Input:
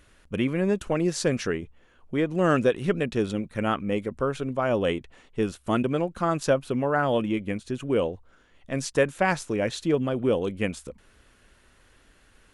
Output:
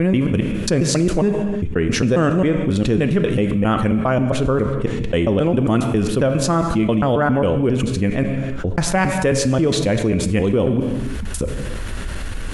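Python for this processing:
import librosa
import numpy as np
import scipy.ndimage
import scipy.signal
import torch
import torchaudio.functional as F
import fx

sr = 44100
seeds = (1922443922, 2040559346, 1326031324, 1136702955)

y = fx.block_reorder(x, sr, ms=135.0, group=5)
y = fx.low_shelf(y, sr, hz=210.0, db=11.0)
y = fx.rev_gated(y, sr, seeds[0], gate_ms=370, shape='falling', drr_db=9.5)
y = fx.env_flatten(y, sr, amount_pct=70)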